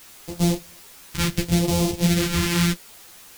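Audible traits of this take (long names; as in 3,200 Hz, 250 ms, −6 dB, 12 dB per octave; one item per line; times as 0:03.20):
a buzz of ramps at a fixed pitch in blocks of 256 samples
phaser sweep stages 2, 0.7 Hz, lowest notch 590–1,500 Hz
a quantiser's noise floor 8 bits, dither triangular
a shimmering, thickened sound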